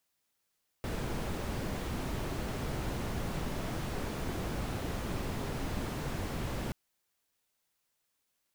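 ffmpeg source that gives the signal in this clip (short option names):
-f lavfi -i "anoisesrc=c=brown:a=0.0832:d=5.88:r=44100:seed=1"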